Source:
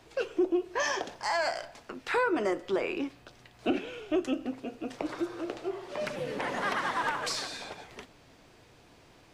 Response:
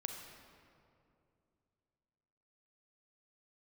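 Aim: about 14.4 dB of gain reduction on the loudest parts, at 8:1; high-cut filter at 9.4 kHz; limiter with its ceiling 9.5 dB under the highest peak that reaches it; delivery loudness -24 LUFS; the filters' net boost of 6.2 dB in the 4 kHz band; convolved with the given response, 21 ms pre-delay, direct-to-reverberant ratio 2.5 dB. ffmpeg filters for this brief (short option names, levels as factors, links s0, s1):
-filter_complex "[0:a]lowpass=9400,equalizer=f=4000:t=o:g=8,acompressor=threshold=0.0126:ratio=8,alimiter=level_in=2.82:limit=0.0631:level=0:latency=1,volume=0.355,asplit=2[s0][s1];[1:a]atrim=start_sample=2205,adelay=21[s2];[s1][s2]afir=irnorm=-1:irlink=0,volume=0.841[s3];[s0][s3]amix=inputs=2:normalize=0,volume=7.5"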